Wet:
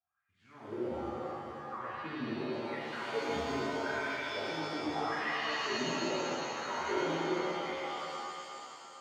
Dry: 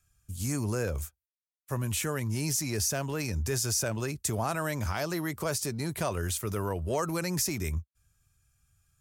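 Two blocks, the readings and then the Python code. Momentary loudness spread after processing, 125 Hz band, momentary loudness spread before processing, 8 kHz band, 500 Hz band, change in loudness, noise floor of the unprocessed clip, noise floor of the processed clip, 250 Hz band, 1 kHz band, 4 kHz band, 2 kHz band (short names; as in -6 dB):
9 LU, -17.0 dB, 6 LU, -18.0 dB, -2.0 dB, -5.0 dB, under -85 dBFS, -63 dBFS, -4.0 dB, +2.0 dB, -1.5 dB, +1.5 dB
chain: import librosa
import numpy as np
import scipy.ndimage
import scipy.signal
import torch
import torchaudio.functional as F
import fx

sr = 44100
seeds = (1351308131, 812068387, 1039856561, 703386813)

y = fx.wah_lfo(x, sr, hz=0.81, low_hz=240.0, high_hz=2000.0, q=11.0)
y = scipy.signal.sosfilt(scipy.signal.butter(2, 2900.0, 'lowpass', fs=sr, output='sos'), y)
y = fx.rev_shimmer(y, sr, seeds[0], rt60_s=2.9, semitones=7, shimmer_db=-2, drr_db=-8.0)
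y = y * librosa.db_to_amplitude(2.0)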